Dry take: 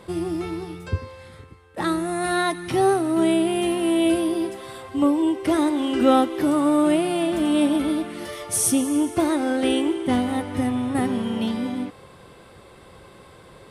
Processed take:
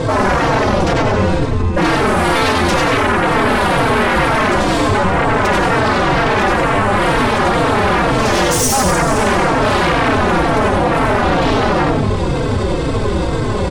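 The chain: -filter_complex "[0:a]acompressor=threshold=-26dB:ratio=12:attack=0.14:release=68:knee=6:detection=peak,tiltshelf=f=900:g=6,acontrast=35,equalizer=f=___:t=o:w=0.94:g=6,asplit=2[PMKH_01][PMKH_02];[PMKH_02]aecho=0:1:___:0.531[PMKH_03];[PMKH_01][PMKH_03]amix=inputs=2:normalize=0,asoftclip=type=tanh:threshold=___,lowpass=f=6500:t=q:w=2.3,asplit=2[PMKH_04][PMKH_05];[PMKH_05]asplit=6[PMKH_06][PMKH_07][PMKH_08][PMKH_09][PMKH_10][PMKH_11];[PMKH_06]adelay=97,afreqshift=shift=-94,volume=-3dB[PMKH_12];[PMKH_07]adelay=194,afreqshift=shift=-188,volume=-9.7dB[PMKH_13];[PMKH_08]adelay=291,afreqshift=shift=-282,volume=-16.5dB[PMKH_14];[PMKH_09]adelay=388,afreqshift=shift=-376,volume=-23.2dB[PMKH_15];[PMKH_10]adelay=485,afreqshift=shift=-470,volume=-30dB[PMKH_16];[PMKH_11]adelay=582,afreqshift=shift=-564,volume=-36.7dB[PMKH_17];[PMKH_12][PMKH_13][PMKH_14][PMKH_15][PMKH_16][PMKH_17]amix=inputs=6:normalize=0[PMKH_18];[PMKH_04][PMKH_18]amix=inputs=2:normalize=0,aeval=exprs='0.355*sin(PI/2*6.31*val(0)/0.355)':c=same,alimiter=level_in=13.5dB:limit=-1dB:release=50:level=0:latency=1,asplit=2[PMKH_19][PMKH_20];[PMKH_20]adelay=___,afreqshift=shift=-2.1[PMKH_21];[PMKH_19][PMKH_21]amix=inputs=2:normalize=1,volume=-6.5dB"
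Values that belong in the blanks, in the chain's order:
65, 82, -14dB, 3.9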